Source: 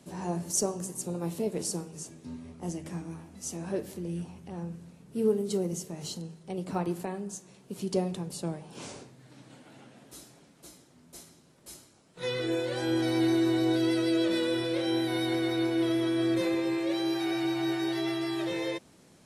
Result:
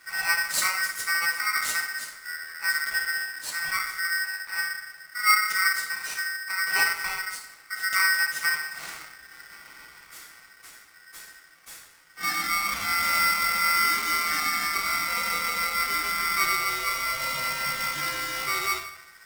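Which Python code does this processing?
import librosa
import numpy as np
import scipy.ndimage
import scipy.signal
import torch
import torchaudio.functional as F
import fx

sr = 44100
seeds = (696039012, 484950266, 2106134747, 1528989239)

y = fx.rev_fdn(x, sr, rt60_s=0.78, lf_ratio=1.0, hf_ratio=0.75, size_ms=34.0, drr_db=-2.0)
y = y * np.sign(np.sin(2.0 * np.pi * 1700.0 * np.arange(len(y)) / sr))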